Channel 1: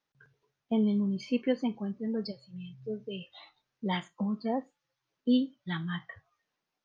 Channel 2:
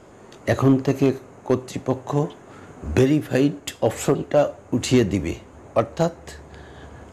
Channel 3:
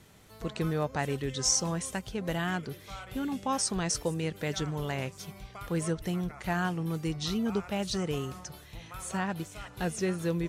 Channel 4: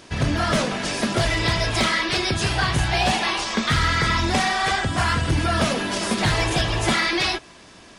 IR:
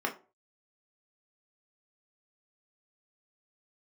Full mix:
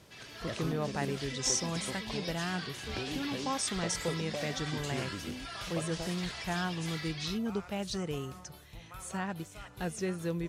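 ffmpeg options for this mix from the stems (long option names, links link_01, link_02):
-filter_complex "[0:a]acompressor=threshold=-34dB:ratio=6,volume=1dB[link_01];[1:a]acompressor=threshold=-20dB:ratio=6,volume=-16dB[link_02];[2:a]volume=-4dB[link_03];[3:a]bandpass=frequency=4500:width_type=q:width=0.66:csg=0,dynaudnorm=framelen=100:gausssize=21:maxgain=10dB,volume=-15dB[link_04];[link_01][link_04]amix=inputs=2:normalize=0,acompressor=threshold=-44dB:ratio=2.5,volume=0dB[link_05];[link_02][link_03][link_05]amix=inputs=3:normalize=0"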